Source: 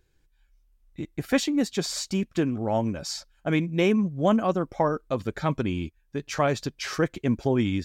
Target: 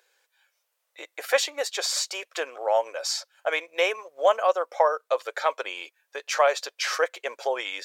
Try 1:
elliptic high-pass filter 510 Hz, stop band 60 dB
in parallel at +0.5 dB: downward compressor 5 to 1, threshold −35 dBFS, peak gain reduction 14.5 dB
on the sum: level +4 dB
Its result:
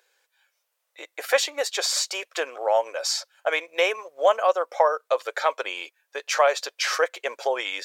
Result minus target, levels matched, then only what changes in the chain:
downward compressor: peak gain reduction −9 dB
change: downward compressor 5 to 1, threshold −46 dBFS, peak gain reduction 23.5 dB

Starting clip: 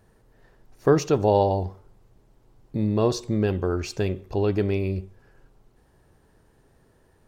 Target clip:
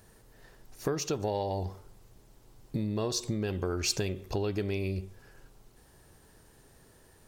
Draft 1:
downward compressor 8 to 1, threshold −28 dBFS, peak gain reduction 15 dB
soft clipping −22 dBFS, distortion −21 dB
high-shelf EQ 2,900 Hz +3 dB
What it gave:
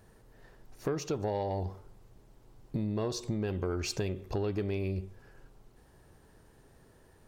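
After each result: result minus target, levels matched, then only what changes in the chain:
soft clipping: distortion +11 dB; 8,000 Hz band −6.0 dB
change: soft clipping −15.5 dBFS, distortion −32 dB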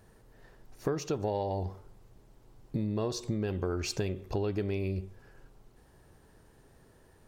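8,000 Hz band −6.5 dB
change: high-shelf EQ 2,900 Hz +12 dB

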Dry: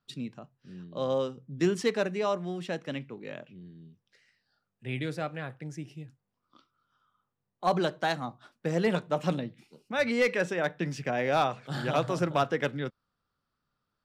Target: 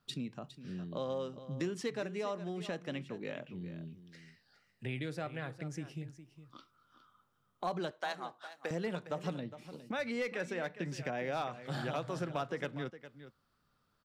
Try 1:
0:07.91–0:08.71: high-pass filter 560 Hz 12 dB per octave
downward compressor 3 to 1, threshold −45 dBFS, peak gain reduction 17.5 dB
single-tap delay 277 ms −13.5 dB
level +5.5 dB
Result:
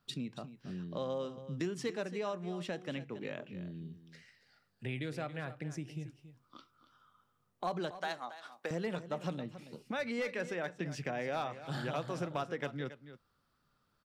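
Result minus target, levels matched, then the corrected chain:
echo 133 ms early
0:07.91–0:08.71: high-pass filter 560 Hz 12 dB per octave
downward compressor 3 to 1, threshold −45 dBFS, peak gain reduction 17.5 dB
single-tap delay 410 ms −13.5 dB
level +5.5 dB

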